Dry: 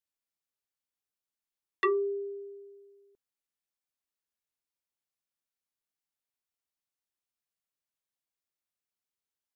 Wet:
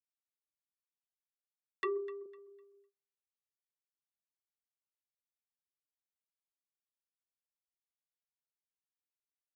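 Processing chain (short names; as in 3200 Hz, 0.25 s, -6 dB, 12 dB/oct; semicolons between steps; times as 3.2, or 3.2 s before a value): 1.84–2.26 fifteen-band EQ 250 Hz -7 dB, 630 Hz +7 dB, 1600 Hz -9 dB; echo with dull and thin repeats by turns 0.126 s, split 820 Hz, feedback 52%, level -11 dB; gate -59 dBFS, range -34 dB; gain -7.5 dB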